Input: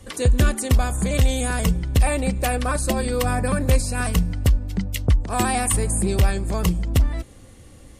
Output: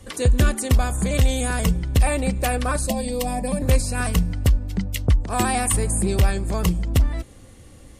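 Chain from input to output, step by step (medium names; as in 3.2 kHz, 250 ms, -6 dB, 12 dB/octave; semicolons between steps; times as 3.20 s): 2.87–3.62 s: static phaser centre 370 Hz, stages 6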